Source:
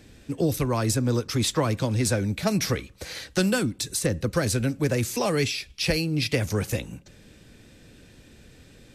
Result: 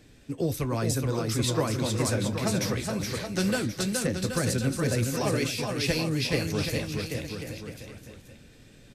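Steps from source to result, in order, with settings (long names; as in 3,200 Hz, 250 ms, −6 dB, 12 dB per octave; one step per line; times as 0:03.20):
flanger 0.23 Hz, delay 6.5 ms, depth 7.6 ms, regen −58%
bouncing-ball delay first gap 420 ms, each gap 0.85×, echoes 5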